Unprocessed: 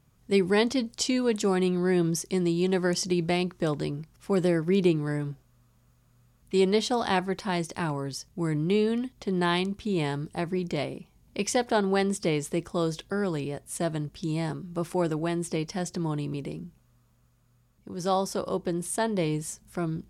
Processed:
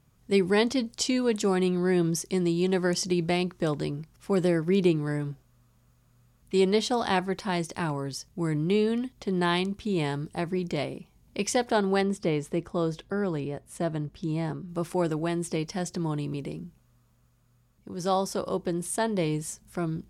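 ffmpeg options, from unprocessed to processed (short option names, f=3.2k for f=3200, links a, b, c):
-filter_complex "[0:a]asettb=1/sr,asplit=3[a][b][c];[a]atrim=end=12.014[d];[b]atrim=start=12.01:end=14.69,asetpts=PTS-STARTPTS,afade=t=in:d=0.004:c=qsin,afade=t=out:st=2.676:d=0.004:c=qsin,highshelf=f=3.2k:g=-10[e];[c]atrim=start=14.686[f];[d][e]acrossfade=d=0.004:c1=hsin:c2=qsin[g];[g][f]acrossfade=d=0.004:c1=qsin:c2=hsin"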